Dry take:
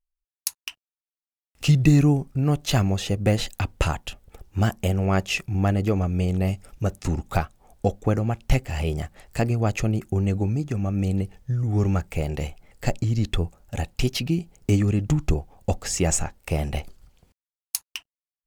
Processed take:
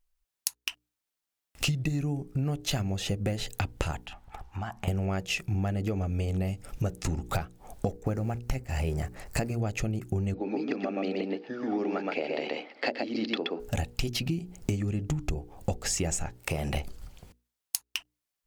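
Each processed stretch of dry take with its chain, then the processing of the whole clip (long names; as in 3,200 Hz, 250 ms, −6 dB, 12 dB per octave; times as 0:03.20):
0:04.06–0:04.88: low-pass filter 1,800 Hz 6 dB per octave + low shelf with overshoot 640 Hz −8.5 dB, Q 3 + downward compressor 8 to 1, threshold −40 dBFS
0:07.87–0:09.56: mu-law and A-law mismatch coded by mu + noise gate −37 dBFS, range −7 dB + parametric band 3,300 Hz −7.5 dB 0.4 octaves
0:10.34–0:13.60: Chebyshev band-pass filter 250–4,800 Hz, order 4 + single-tap delay 124 ms −3 dB
0:16.36–0:16.76: low-shelf EQ 83 Hz −10.5 dB + downward compressor 2 to 1, threshold −32 dBFS
whole clip: mains-hum notches 60/120/180/240/300/360/420/480 Hz; dynamic equaliser 1,100 Hz, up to −5 dB, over −47 dBFS, Q 4.1; downward compressor 12 to 1, threshold −35 dBFS; level +8.5 dB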